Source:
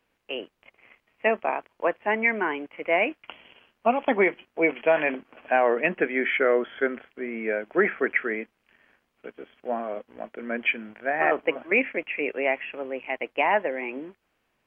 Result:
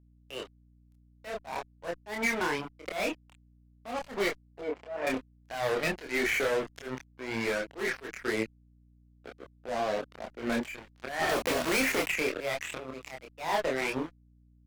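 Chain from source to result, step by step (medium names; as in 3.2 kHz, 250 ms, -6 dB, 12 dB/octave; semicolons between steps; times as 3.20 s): recorder AGC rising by 5.1 dB/s; 11.29–12.08 s: companded quantiser 2-bit; fuzz box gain 25 dB, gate -33 dBFS; 4.61–5.07 s: band-pass filter 560 Hz, Q 0.95; compression 12:1, threshold -31 dBFS, peak gain reduction 16.5 dB; slow attack 152 ms; chorus voices 4, 0.46 Hz, delay 27 ms, depth 3.9 ms; hum 60 Hz, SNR 27 dB; trim +8 dB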